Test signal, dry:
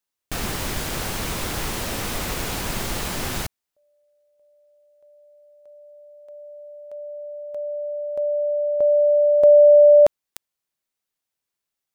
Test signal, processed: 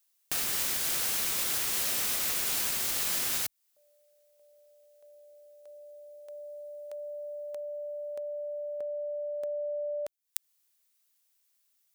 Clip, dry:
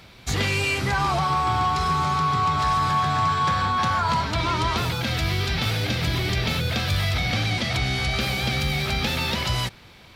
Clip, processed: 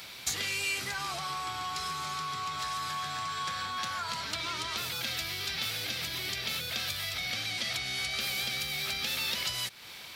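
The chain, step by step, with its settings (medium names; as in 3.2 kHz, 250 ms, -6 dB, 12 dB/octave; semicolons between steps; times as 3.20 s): dynamic bell 910 Hz, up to -6 dB, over -38 dBFS, Q 2.7; compression 4:1, threshold -35 dBFS; tilt EQ +3.5 dB/octave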